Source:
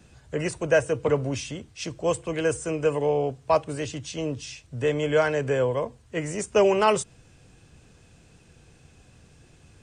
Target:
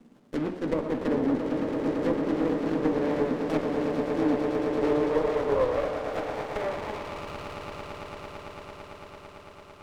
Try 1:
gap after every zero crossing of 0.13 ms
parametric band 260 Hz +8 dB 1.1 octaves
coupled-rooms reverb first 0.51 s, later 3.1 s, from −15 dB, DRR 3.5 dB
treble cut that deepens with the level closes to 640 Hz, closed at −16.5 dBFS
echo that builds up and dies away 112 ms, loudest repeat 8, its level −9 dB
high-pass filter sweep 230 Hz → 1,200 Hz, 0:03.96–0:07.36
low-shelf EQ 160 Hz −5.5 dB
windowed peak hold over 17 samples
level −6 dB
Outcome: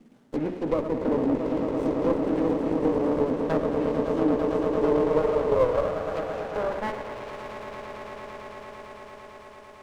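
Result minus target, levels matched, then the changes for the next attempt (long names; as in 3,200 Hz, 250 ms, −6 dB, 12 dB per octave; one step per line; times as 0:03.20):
gap after every zero crossing: distortion −12 dB
change: gap after every zero crossing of 0.47 ms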